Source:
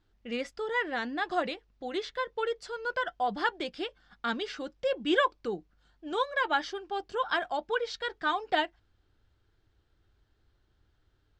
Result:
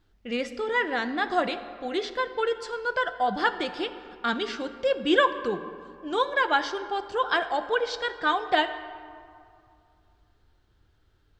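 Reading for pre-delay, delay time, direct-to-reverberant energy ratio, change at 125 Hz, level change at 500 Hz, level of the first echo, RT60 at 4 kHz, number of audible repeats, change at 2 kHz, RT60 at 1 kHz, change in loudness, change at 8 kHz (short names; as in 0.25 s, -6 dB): 15 ms, none, 10.5 dB, +5.0 dB, +5.0 dB, none, 1.2 s, none, +5.0 dB, 2.5 s, +5.0 dB, +4.5 dB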